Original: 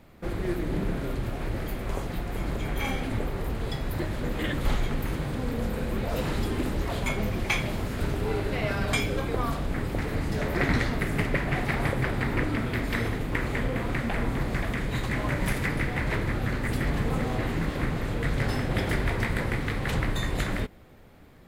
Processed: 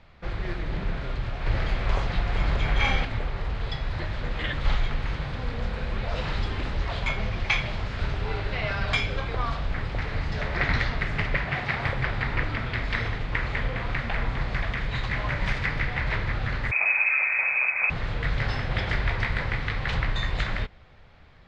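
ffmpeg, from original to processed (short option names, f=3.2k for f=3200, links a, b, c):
-filter_complex "[0:a]asettb=1/sr,asplit=3[a][b][c];[a]atrim=end=1.464[d];[b]atrim=start=1.46:end=3.05,asetpts=PTS-STARTPTS,afade=t=in:d=0.004:c=qsin,afade=t=out:st=1.586:d=0.004:c=qsin,acontrast=30[e];[c]atrim=start=3.046[f];[d][e]acrossfade=d=0.004:c1=hsin:c2=qsin[g];[g][f]acrossfade=d=0.004:c1=qsin:c2=hsin,asettb=1/sr,asplit=3[h][i][j];[h]atrim=end=11.444[k];[i]atrim=start=11.44:end=11.86,asetpts=PTS-STARTPTS,afade=t=in:d=0.004:c=qsin,afade=t=out:st=0.416:d=0.004:c=qsin,highpass=83[l];[j]atrim=start=11.856[m];[k][l]acrossfade=d=0.004:c1=hsin:c2=qsin[n];[n][m]acrossfade=d=0.004:c1=qsin:c2=hsin,asettb=1/sr,asplit=3[o][p][q];[o]atrim=end=16.714[r];[p]atrim=start=16.71:end=17.9,asetpts=PTS-STARTPTS,afade=t=in:d=0.004:c=qsin,afade=t=out:st=1.186:d=0.004:c=qsin,lowpass=f=2.2k:t=q:w=0.5098,lowpass=f=2.2k:t=q:w=0.6013,lowpass=f=2.2k:t=q:w=0.9,lowpass=f=2.2k:t=q:w=2.563,afreqshift=-2600[s];[q]atrim=start=17.896[t];[r][s]acrossfade=d=0.004:c1=hsin:c2=qsin[u];[u][t]acrossfade=d=0.004:c1=qsin:c2=hsin,lowpass=f=5k:w=0.5412,lowpass=f=5k:w=1.3066,equalizer=f=290:w=0.76:g=-13.5,volume=3.5dB"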